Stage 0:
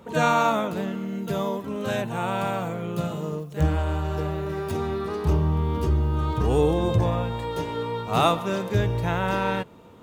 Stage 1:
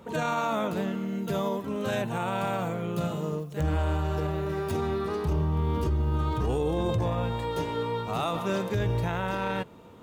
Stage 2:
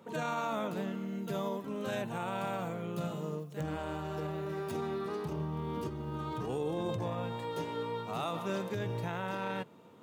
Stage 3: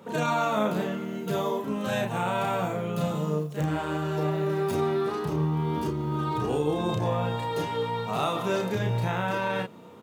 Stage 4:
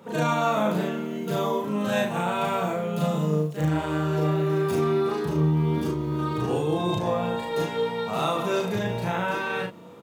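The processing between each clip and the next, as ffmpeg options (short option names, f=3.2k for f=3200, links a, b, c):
-af "alimiter=limit=-18.5dB:level=0:latency=1:release=19,volume=-1dB"
-af "highpass=f=120:w=0.5412,highpass=f=120:w=1.3066,volume=-6.5dB"
-filter_complex "[0:a]asplit=2[a][b];[b]adelay=33,volume=-3dB[c];[a][c]amix=inputs=2:normalize=0,volume=7dB"
-filter_complex "[0:a]asplit=2[a][b];[b]adelay=39,volume=-2.5dB[c];[a][c]amix=inputs=2:normalize=0"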